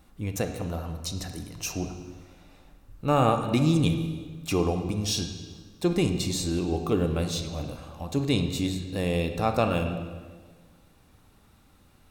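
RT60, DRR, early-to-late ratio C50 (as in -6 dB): 1.5 s, 6.5 dB, 7.5 dB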